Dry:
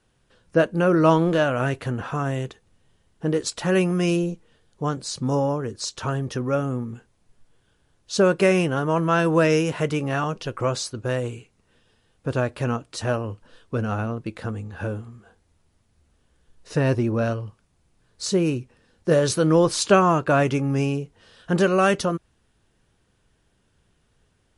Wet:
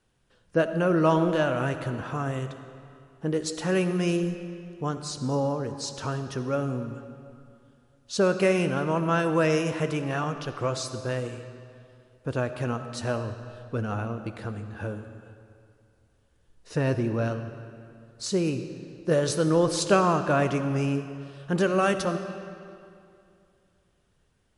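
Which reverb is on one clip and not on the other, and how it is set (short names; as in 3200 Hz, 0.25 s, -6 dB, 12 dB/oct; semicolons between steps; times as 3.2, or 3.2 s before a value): digital reverb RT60 2.5 s, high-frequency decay 0.8×, pre-delay 25 ms, DRR 9 dB; gain -4.5 dB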